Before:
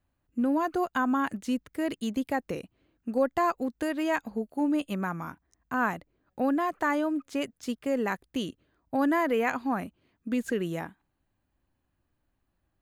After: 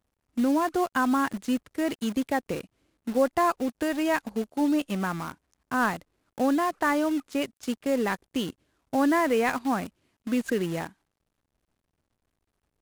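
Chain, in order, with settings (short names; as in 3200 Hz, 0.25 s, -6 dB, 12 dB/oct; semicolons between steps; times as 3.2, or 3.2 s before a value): CVSD 64 kbps; in parallel at -4.5 dB: bit-crush 6-bit; on the sum: gain -1.5 dB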